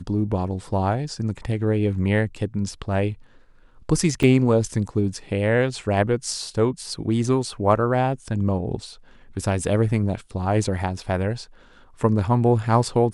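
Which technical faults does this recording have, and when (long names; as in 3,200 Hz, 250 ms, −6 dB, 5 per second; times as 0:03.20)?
0:04.23: drop-out 4.4 ms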